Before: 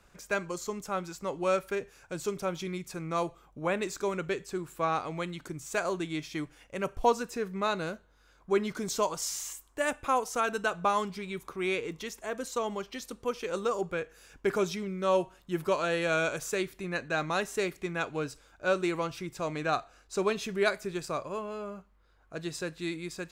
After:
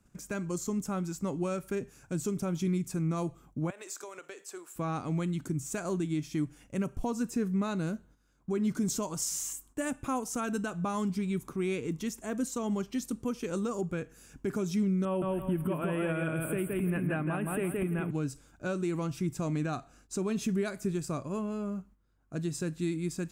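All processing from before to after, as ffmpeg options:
ffmpeg -i in.wav -filter_complex "[0:a]asettb=1/sr,asplit=3[link_01][link_02][link_03];[link_01]atrim=end=3.704[link_04];[link_02]atrim=start=3.7:end=4.76,asetpts=PTS-STARTPTS,afade=type=in:duration=0.004:curve=qsin,afade=type=out:start_time=1.056:duration=0.004:curve=qsin,highpass=frequency=510:width=0.5412,highpass=frequency=510:width=1.3066,acompressor=threshold=-37dB:ratio=10:attack=3.2:release=140:knee=1:detection=peak[link_05];[link_03]atrim=start=4.756[link_06];[link_04][link_05]acrossfade=duration=0.004:curve1=hsin:curve2=qsin[link_07];[link_07][link_06]acrossfade=duration=0.004:curve1=qsin:curve2=hsin,asettb=1/sr,asplit=3[link_08][link_09][link_10];[link_08]atrim=end=15.054[link_11];[link_09]atrim=start=15.05:end=18.11,asetpts=PTS-STARTPTS,afade=type=in:duration=0.004:curve=qsin,afade=type=out:start_time=3.056:duration=0.004:curve=qsin,acompressor=mode=upward:threshold=-31dB:ratio=2.5:attack=3.2:release=140:knee=2.83:detection=peak,asuperstop=centerf=5400:order=12:qfactor=1,aecho=1:1:168|336|504|672:0.668|0.201|0.0602|0.018,atrim=end_sample=134946[link_12];[link_10]atrim=start=18.106[link_13];[link_11][link_12]acrossfade=duration=0.004:curve1=hsin:curve2=qsin[link_14];[link_14][link_13]acrossfade=duration=0.004:curve1=qsin:curve2=hsin,agate=range=-9dB:threshold=-59dB:ratio=16:detection=peak,equalizer=frequency=125:width_type=o:width=1:gain=8,equalizer=frequency=250:width_type=o:width=1:gain=9,equalizer=frequency=500:width_type=o:width=1:gain=-6,equalizer=frequency=1000:width_type=o:width=1:gain=-4,equalizer=frequency=2000:width_type=o:width=1:gain=-5,equalizer=frequency=4000:width_type=o:width=1:gain=-7,equalizer=frequency=8000:width_type=o:width=1:gain=4,alimiter=limit=-23.5dB:level=0:latency=1:release=168,volume=1.5dB" out.wav

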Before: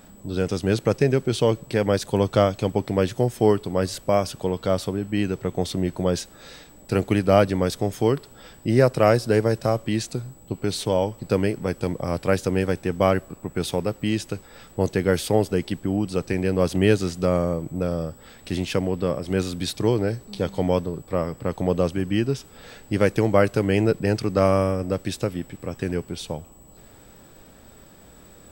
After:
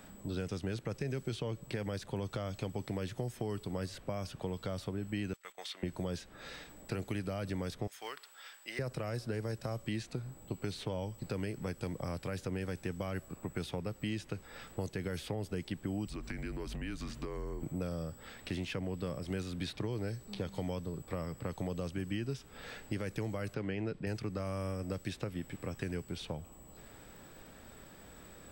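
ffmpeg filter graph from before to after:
ffmpeg -i in.wav -filter_complex "[0:a]asettb=1/sr,asplit=3[link_01][link_02][link_03];[link_01]atrim=end=5.334[link_04];[link_02]atrim=start=5.33:end=5.83,asetpts=PTS-STARTPTS,afade=type=in:duration=0.004:curve=qsin,afade=type=out:start_time=0.496:duration=0.004:curve=qsin,highpass=1500,agate=range=-12dB:threshold=-51dB:ratio=16:release=100:detection=peak[link_05];[link_03]atrim=start=5.826[link_06];[link_04][link_05]acrossfade=duration=0.004:curve1=hsin:curve2=qsin[link_07];[link_07][link_06]acrossfade=duration=0.004:curve1=qsin:curve2=hsin,asettb=1/sr,asplit=3[link_08][link_09][link_10];[link_08]atrim=end=7.874[link_11];[link_09]atrim=start=7.87:end=8.79,asetpts=PTS-STARTPTS,afade=type=in:duration=0.004:curve=qsin,afade=type=out:start_time=0.916:duration=0.004:curve=qsin,highpass=1200,acrusher=bits=4:mode=log:mix=0:aa=0.000001[link_12];[link_10]atrim=start=8.786[link_13];[link_11][link_12]acrossfade=duration=0.004:curve1=hsin:curve2=qsin[link_14];[link_14][link_13]acrossfade=duration=0.004:curve1=qsin:curve2=hsin,asettb=1/sr,asplit=3[link_15][link_16][link_17];[link_15]atrim=end=16.064[link_18];[link_16]atrim=start=16.06:end=17.63,asetpts=PTS-STARTPTS,afade=type=in:duration=0.004:curve=qsin,afade=type=out:start_time=1.566:duration=0.004:curve=qsin,bandreject=frequency=60:width_type=h:width=6,bandreject=frequency=120:width_type=h:width=6,bandreject=frequency=180:width_type=h:width=6,bandreject=frequency=240:width_type=h:width=6,bandreject=frequency=300:width_type=h:width=6,bandreject=frequency=360:width_type=h:width=6,acompressor=threshold=-29dB:ratio=5:attack=3.2:release=140:knee=1:detection=peak,afreqshift=-130[link_19];[link_17]atrim=start=17.626[link_20];[link_18][link_19]acrossfade=duration=0.004:curve1=hsin:curve2=qsin[link_21];[link_21][link_20]acrossfade=duration=0.004:curve1=qsin:curve2=hsin,asettb=1/sr,asplit=3[link_22][link_23][link_24];[link_22]atrim=end=23.544[link_25];[link_23]atrim=start=23.54:end=24.07,asetpts=PTS-STARTPTS,afade=type=in:duration=0.004:curve=qsin,afade=type=out:start_time=0.526:duration=0.004:curve=qsin,lowpass=3100,equalizer=frequency=62:width_type=o:width=1.7:gain=-11.5[link_26];[link_24]atrim=start=24.066[link_27];[link_25][link_26]acrossfade=duration=0.004:curve1=hsin:curve2=qsin[link_28];[link_28][link_27]acrossfade=duration=0.004:curve1=qsin:curve2=hsin,equalizer=frequency=1900:width_type=o:width=1.6:gain=4.5,alimiter=limit=-11dB:level=0:latency=1,acrossover=split=190|3800[link_29][link_30][link_31];[link_29]acompressor=threshold=-33dB:ratio=4[link_32];[link_30]acompressor=threshold=-34dB:ratio=4[link_33];[link_31]acompressor=threshold=-49dB:ratio=4[link_34];[link_32][link_33][link_34]amix=inputs=3:normalize=0,volume=-5.5dB" out.wav

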